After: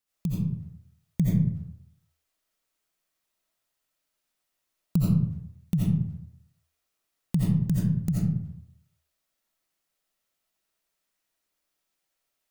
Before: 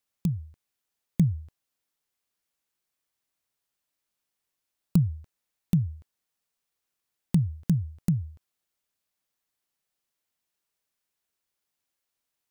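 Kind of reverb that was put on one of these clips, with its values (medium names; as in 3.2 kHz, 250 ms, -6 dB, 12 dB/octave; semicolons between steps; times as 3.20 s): algorithmic reverb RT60 0.71 s, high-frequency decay 0.55×, pre-delay 45 ms, DRR -6.5 dB; trim -3 dB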